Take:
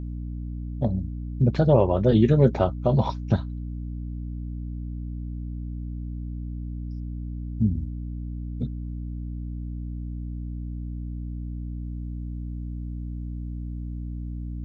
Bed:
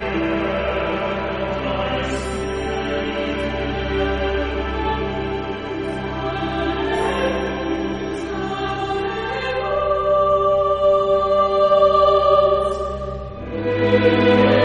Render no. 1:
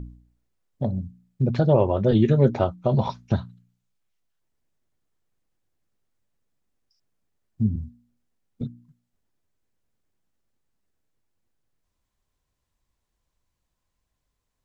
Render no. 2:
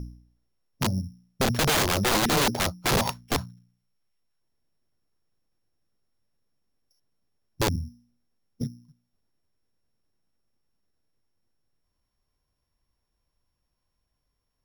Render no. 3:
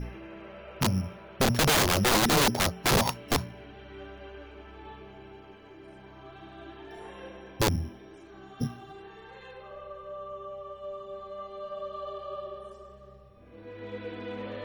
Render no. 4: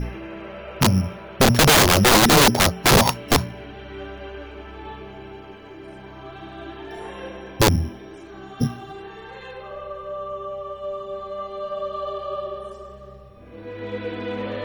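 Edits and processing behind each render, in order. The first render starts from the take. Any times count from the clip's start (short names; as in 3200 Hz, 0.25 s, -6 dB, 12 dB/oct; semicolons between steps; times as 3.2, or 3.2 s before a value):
de-hum 60 Hz, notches 5
sample sorter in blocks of 8 samples; wrapped overs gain 17.5 dB
add bed -24 dB
gain +9 dB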